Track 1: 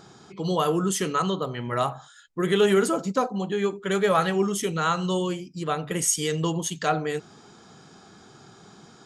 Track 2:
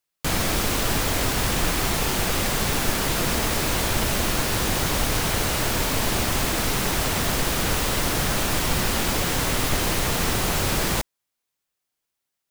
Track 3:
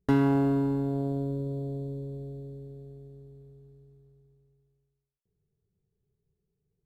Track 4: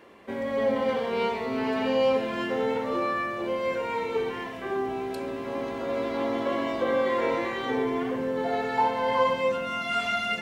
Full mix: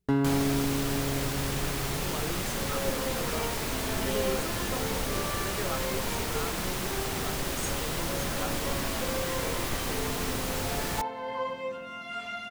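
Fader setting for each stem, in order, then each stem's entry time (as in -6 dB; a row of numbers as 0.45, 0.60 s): -15.0, -9.0, -2.5, -9.5 dB; 1.55, 0.00, 0.00, 2.20 s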